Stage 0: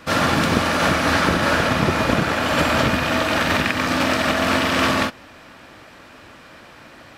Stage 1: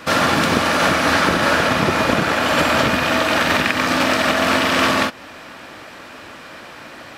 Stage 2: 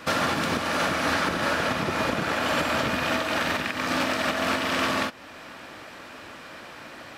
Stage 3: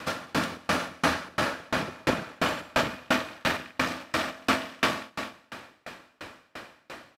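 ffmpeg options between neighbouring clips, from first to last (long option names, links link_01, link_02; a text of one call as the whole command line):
ffmpeg -i in.wav -filter_complex "[0:a]lowshelf=frequency=140:gain=-9,asplit=2[link_01][link_02];[link_02]acompressor=threshold=-27dB:ratio=6,volume=2dB[link_03];[link_01][link_03]amix=inputs=2:normalize=0" out.wav
ffmpeg -i in.wav -af "alimiter=limit=-9.5dB:level=0:latency=1:release=428,volume=-5dB" out.wav
ffmpeg -i in.wav -af "aecho=1:1:211|422|633|844|1055:0.355|0.167|0.0784|0.0368|0.0173,aeval=exprs='val(0)*pow(10,-35*if(lt(mod(2.9*n/s,1),2*abs(2.9)/1000),1-mod(2.9*n/s,1)/(2*abs(2.9)/1000),(mod(2.9*n/s,1)-2*abs(2.9)/1000)/(1-2*abs(2.9)/1000))/20)':channel_layout=same,volume=4.5dB" out.wav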